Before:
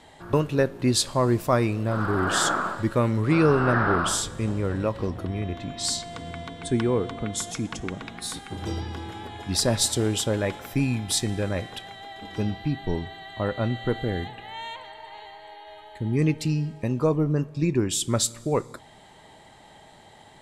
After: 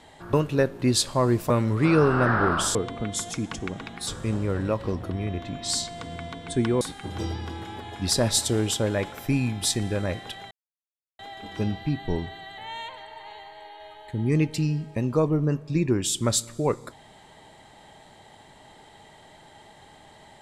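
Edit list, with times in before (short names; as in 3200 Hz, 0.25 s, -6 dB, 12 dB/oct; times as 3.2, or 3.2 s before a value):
1.5–2.97 cut
6.96–8.28 move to 4.22
11.98 insert silence 0.68 s
13.37–14.45 cut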